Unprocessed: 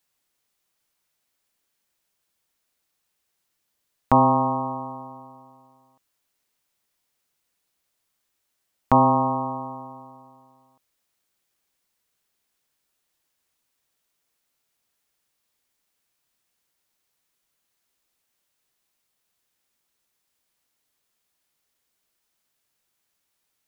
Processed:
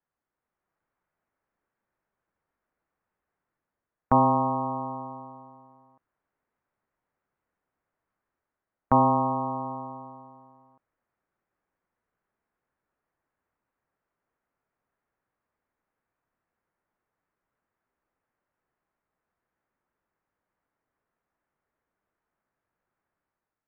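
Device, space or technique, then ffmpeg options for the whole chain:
action camera in a waterproof case: -af "lowpass=f=1700:w=0.5412,lowpass=f=1700:w=1.3066,dynaudnorm=f=110:g=9:m=2,volume=0.596" -ar 22050 -c:a aac -b:a 64k

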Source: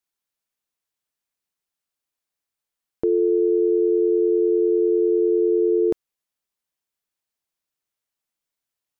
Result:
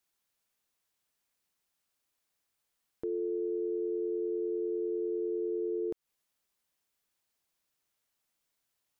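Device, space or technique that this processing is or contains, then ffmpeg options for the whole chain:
stacked limiters: -af "alimiter=limit=0.112:level=0:latency=1:release=153,alimiter=level_in=1.19:limit=0.0631:level=0:latency=1:release=32,volume=0.841,alimiter=level_in=2.37:limit=0.0631:level=0:latency=1:release=204,volume=0.422,volume=1.58"

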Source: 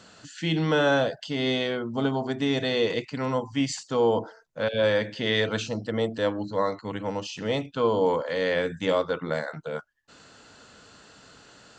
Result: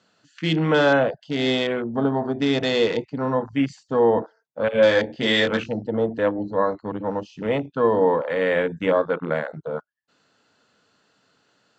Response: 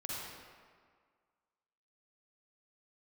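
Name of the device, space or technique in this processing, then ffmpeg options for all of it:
over-cleaned archive recording: -filter_complex "[0:a]asettb=1/sr,asplit=3[s0][s1][s2];[s0]atrim=end=4.724[s3];[s1]atrim=start=4.72:end=5.64,asetpts=PTS-STARTPTS,afade=t=in:d=0.004:c=qsin,afade=t=out:st=0.916:d=0.004:c=qsin,asplit=2[s4][s5];[s5]adelay=22,volume=0.708[s6];[s4][s6]amix=inputs=2:normalize=0,atrim=end_sample=40572[s7];[s2]atrim=start=5.636[s8];[s3][s7]acrossfade=d=0.004:c1=hsin:c2=qsin[s9];[s9][s8]acrossfade=d=0.004:c1=qsin:c2=hsin,highpass=120,lowpass=6300,afwtdn=0.02,volume=1.68"

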